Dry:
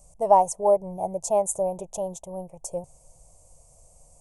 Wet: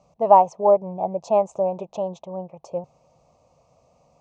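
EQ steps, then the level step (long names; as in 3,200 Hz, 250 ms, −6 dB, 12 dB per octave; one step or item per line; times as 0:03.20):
high-frequency loss of the air 170 metres
loudspeaker in its box 150–6,000 Hz, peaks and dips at 230 Hz +6 dB, 1,200 Hz +9 dB, 2,600 Hz +7 dB, 4,000 Hz +6 dB
+3.5 dB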